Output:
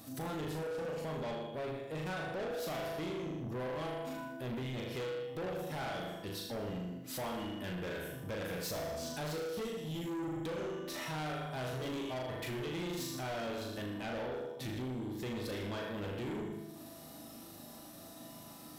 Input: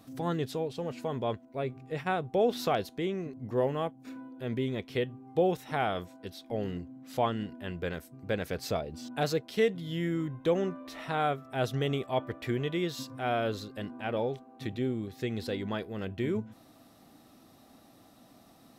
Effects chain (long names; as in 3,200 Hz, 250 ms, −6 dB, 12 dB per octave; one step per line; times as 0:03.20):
transient designer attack −2 dB, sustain −8 dB
high-shelf EQ 5,900 Hz +11 dB
flutter between parallel walls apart 6.7 metres, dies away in 0.65 s
downward compressor 2 to 1, threshold −36 dBFS, peak gain reduction 9.5 dB
0:09.47–0:10.32: parametric band 1,500 Hz −10.5 dB 1.5 octaves
convolution reverb RT60 1.1 s, pre-delay 3 ms, DRR 4.5 dB
soft clipping −38 dBFS, distortion −8 dB
level +2 dB